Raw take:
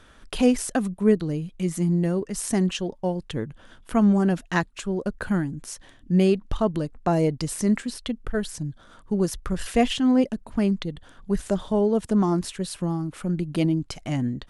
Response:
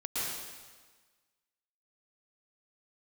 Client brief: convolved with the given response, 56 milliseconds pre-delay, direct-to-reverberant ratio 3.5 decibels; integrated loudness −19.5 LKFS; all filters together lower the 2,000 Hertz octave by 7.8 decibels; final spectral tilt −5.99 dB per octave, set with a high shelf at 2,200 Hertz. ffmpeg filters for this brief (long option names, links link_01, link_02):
-filter_complex "[0:a]equalizer=frequency=2000:width_type=o:gain=-6.5,highshelf=frequency=2200:gain=-7,asplit=2[link_01][link_02];[1:a]atrim=start_sample=2205,adelay=56[link_03];[link_02][link_03]afir=irnorm=-1:irlink=0,volume=-9.5dB[link_04];[link_01][link_04]amix=inputs=2:normalize=0,volume=4.5dB"